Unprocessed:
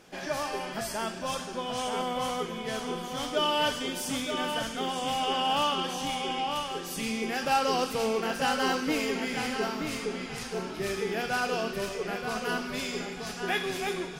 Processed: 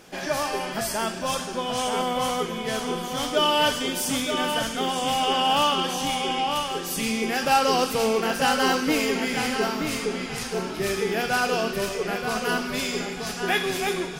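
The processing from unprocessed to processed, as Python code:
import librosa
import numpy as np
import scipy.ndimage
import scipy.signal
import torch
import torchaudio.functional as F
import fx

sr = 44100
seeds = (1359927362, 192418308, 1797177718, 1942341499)

y = fx.high_shelf(x, sr, hz=9300.0, db=5.5)
y = y * 10.0 ** (5.5 / 20.0)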